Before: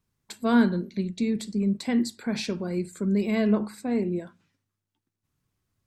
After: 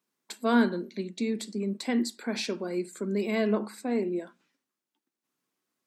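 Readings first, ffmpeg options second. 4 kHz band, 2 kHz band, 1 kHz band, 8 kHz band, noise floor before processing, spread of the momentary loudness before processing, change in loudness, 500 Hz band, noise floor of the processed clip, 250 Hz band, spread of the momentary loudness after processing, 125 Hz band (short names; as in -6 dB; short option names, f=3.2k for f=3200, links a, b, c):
0.0 dB, 0.0 dB, 0.0 dB, 0.0 dB, -85 dBFS, 9 LU, -3.0 dB, 0.0 dB, under -85 dBFS, -4.5 dB, 10 LU, -8.0 dB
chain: -af "highpass=f=240:w=0.5412,highpass=f=240:w=1.3066"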